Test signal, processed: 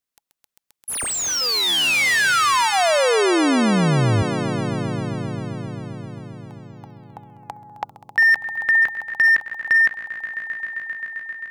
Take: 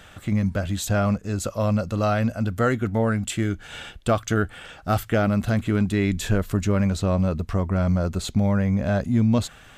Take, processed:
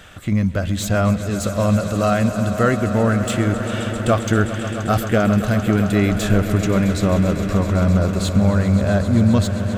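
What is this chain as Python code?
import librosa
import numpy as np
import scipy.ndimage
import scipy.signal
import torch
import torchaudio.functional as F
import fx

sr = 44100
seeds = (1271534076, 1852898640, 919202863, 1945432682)

y = fx.notch(x, sr, hz=840.0, q=12.0)
y = fx.echo_swell(y, sr, ms=132, loudest=5, wet_db=-14.0)
y = fx.slew_limit(y, sr, full_power_hz=290.0)
y = y * librosa.db_to_amplitude(4.0)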